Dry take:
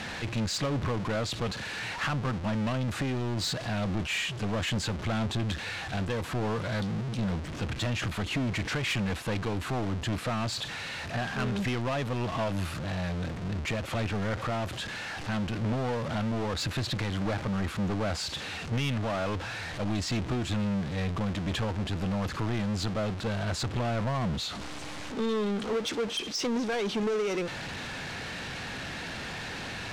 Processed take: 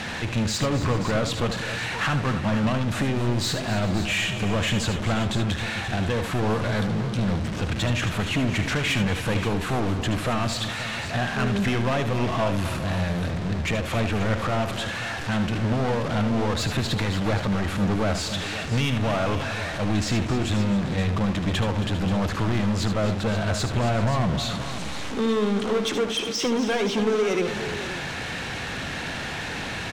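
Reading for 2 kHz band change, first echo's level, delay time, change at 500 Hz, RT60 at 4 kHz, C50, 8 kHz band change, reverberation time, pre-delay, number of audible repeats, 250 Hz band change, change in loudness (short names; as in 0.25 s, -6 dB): +6.5 dB, -9.5 dB, 75 ms, +6.5 dB, none, none, +6.0 dB, none, none, 5, +6.5 dB, +6.5 dB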